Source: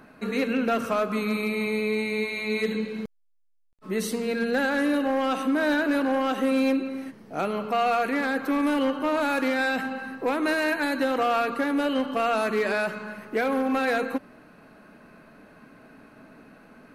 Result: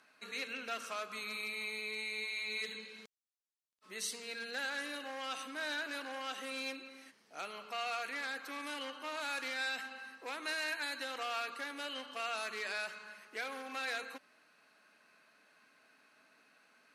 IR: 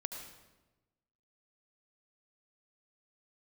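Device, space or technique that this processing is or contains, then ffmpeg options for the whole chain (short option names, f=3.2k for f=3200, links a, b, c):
piezo pickup straight into a mixer: -af "lowpass=6.2k,aderivative,volume=2dB"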